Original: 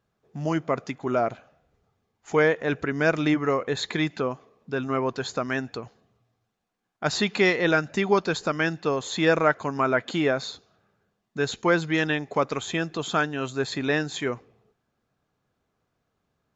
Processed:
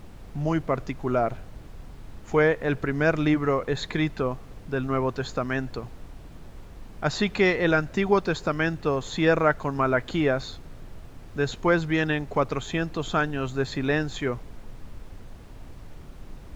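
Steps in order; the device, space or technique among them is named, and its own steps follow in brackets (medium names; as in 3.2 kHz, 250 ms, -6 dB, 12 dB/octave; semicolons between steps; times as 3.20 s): car interior (peaking EQ 120 Hz +5 dB; treble shelf 3.7 kHz -7 dB; brown noise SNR 13 dB)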